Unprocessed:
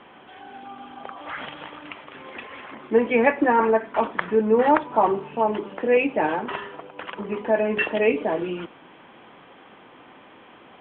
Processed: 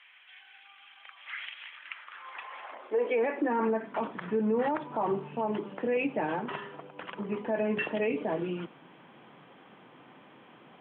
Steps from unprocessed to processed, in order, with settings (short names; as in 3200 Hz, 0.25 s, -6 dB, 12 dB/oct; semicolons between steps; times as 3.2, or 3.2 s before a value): high-pass sweep 2200 Hz -> 140 Hz, 1.69–4.07; limiter -13.5 dBFS, peak gain reduction 11.5 dB; gain -7 dB